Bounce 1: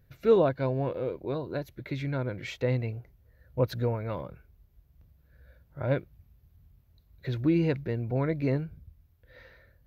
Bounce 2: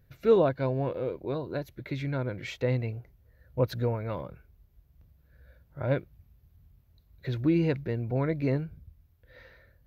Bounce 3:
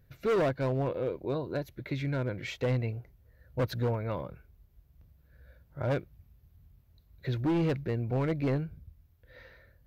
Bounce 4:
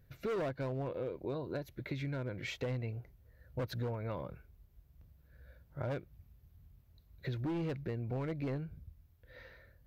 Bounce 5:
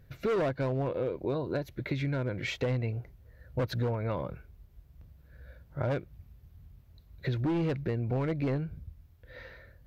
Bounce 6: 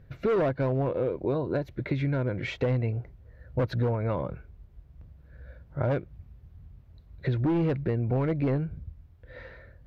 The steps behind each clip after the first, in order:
no processing that can be heard
gain into a clipping stage and back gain 24 dB
downward compressor 4 to 1, threshold −34 dBFS, peak gain reduction 7.5 dB; level −1.5 dB
high-shelf EQ 8,600 Hz −6.5 dB; level +7 dB
low-pass filter 1,900 Hz 6 dB per octave; level +4 dB

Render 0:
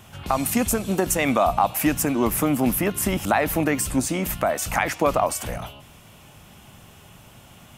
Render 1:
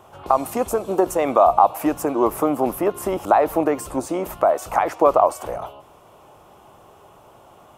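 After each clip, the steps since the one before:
flat-topped bell 640 Hz +15 dB 2.3 octaves
level −9 dB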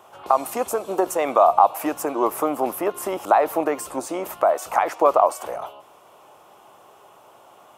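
high-pass filter 540 Hz 6 dB per octave
level +1 dB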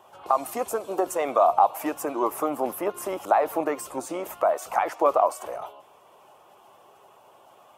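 spectral magnitudes quantised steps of 15 dB
level −3.5 dB

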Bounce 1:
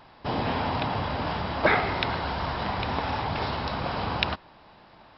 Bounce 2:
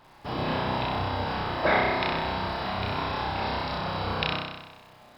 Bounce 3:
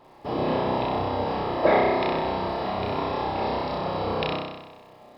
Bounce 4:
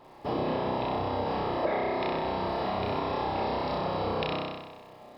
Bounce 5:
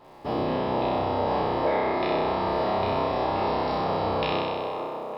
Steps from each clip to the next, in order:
surface crackle 170 per second −45 dBFS; on a send: flutter between parallel walls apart 5.4 metres, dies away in 1.1 s; on the sum: level −5 dB
parametric band 430 Hz +12 dB 2.2 octaves; notch filter 1,500 Hz, Q 6.8; level −4 dB
downward compressor 6 to 1, threshold −26 dBFS, peak gain reduction 11 dB
peak hold with a decay on every bin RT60 1.77 s; delay with a band-pass on its return 454 ms, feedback 56%, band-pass 670 Hz, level −4 dB

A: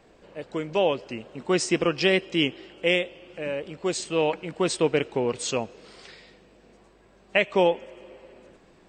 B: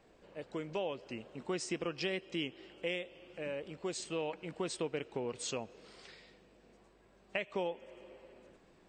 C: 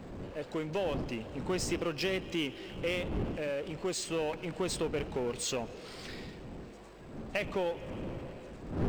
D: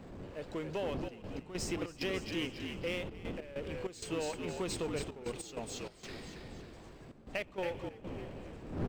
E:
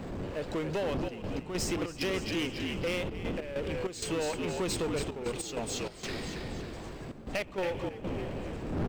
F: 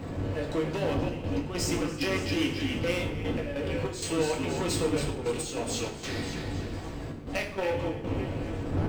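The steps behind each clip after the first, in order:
downward compressor 2.5 to 1, threshold −28 dBFS, peak gain reduction 8.5 dB; level −8 dB
wind on the microphone 300 Hz −47 dBFS; power curve on the samples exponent 0.7
on a send: echo with shifted repeats 276 ms, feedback 44%, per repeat −65 Hz, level −6 dB; on the sum: gate pattern "xxxxxxx.x.xx." 97 BPM −12 dB; level −4 dB
in parallel at +1 dB: downward compressor, threshold −43 dBFS, peak gain reduction 12 dB; on the sum: soft clipping −29.5 dBFS, distortion −16 dB; level +4 dB
convolution reverb RT60 0.65 s, pre-delay 5 ms, DRR 0 dB

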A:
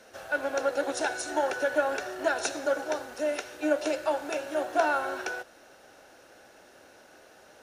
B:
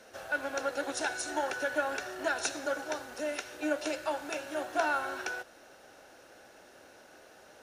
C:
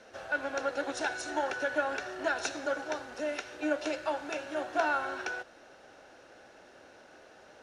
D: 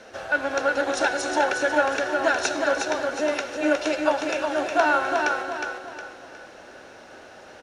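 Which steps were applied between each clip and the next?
dynamic equaliser 510 Hz, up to −6 dB, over −40 dBFS, Q 0.86; level −1 dB
high-frequency loss of the air 73 metres; level +1 dB
repeating echo 362 ms, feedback 38%, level −4.5 dB; level +8.5 dB

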